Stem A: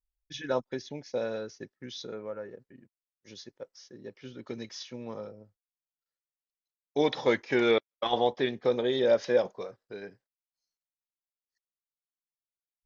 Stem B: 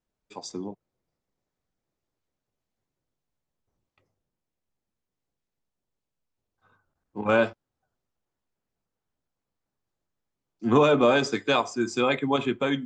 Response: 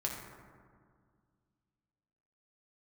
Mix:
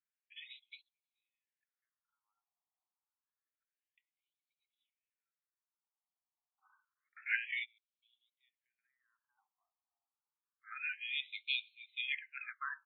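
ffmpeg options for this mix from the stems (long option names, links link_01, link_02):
-filter_complex "[0:a]volume=-1.5dB[link_01];[1:a]volume=-6dB,asplit=2[link_02][link_03];[link_03]apad=whole_len=567080[link_04];[link_01][link_04]sidechaingate=range=-38dB:threshold=-50dB:ratio=16:detection=peak[link_05];[link_05][link_02]amix=inputs=2:normalize=0,afftfilt=real='re*between(b*sr/1024,920*pow(3100/920,0.5+0.5*sin(2*PI*0.28*pts/sr))/1.41,920*pow(3100/920,0.5+0.5*sin(2*PI*0.28*pts/sr))*1.41)':imag='im*between(b*sr/1024,920*pow(3100/920,0.5+0.5*sin(2*PI*0.28*pts/sr))/1.41,920*pow(3100/920,0.5+0.5*sin(2*PI*0.28*pts/sr))*1.41)':win_size=1024:overlap=0.75"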